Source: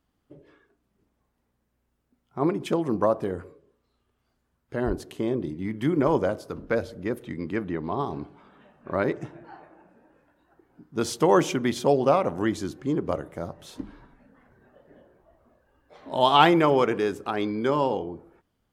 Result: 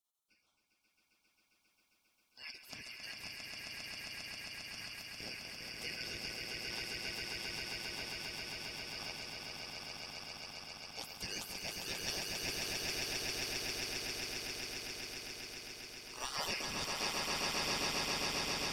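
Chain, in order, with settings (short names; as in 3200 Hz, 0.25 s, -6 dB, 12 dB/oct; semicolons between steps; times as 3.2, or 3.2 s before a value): four-band scrambler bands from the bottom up 3142; spectral gate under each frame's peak -30 dB weak; swelling echo 0.134 s, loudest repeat 8, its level -3.5 dB; gain +1.5 dB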